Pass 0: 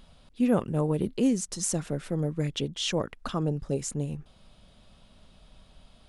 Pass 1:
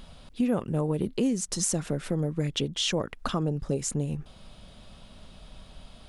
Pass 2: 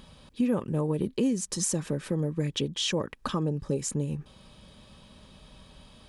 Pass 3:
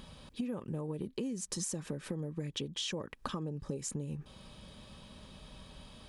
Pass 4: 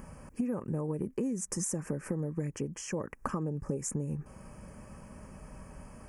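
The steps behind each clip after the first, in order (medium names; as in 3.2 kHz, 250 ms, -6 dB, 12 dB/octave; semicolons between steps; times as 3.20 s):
compression 2.5:1, threshold -34 dBFS, peak gain reduction 11 dB; trim +7 dB
comb of notches 700 Hz
compression, threshold -35 dBFS, peak gain reduction 12.5 dB
Butterworth band-stop 3.7 kHz, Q 0.9; trim +4.5 dB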